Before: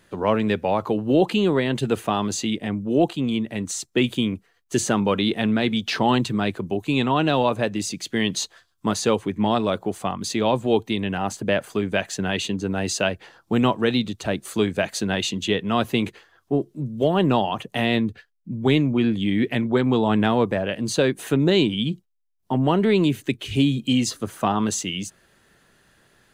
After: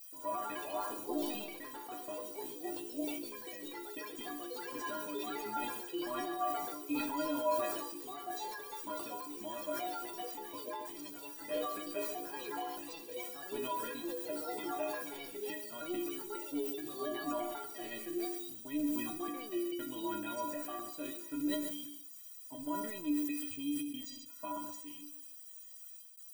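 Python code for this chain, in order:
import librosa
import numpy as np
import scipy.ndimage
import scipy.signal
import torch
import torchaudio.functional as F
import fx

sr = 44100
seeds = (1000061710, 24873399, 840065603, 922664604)

y = fx.lowpass(x, sr, hz=2100.0, slope=6)
y = fx.low_shelf(y, sr, hz=240.0, db=-7.0)
y = fx.level_steps(y, sr, step_db=12)
y = fx.dmg_noise_colour(y, sr, seeds[0], colour='violet', level_db=-37.0)
y = fx.step_gate(y, sr, bpm=94, pattern='xxxxxxxxx.x.xx', floor_db=-60.0, edge_ms=4.5)
y = fx.stiff_resonator(y, sr, f0_hz=290.0, decay_s=0.45, stiffness=0.03)
y = fx.echo_pitch(y, sr, ms=135, semitones=3, count=3, db_per_echo=-3.0)
y = fx.echo_heads(y, sr, ms=66, heads='first and second', feedback_pct=46, wet_db=-16.5)
y = fx.sustainer(y, sr, db_per_s=36.0)
y = y * 10.0 ** (1.0 / 20.0)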